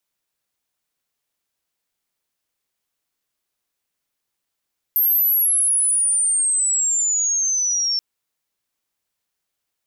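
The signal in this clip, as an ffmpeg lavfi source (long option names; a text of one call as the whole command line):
ffmpeg -f lavfi -i "aevalsrc='pow(10,(-14-4*t/3.03)/20)*sin(2*PI*13000*3.03/log(5400/13000)*(exp(log(5400/13000)*t/3.03)-1))':duration=3.03:sample_rate=44100" out.wav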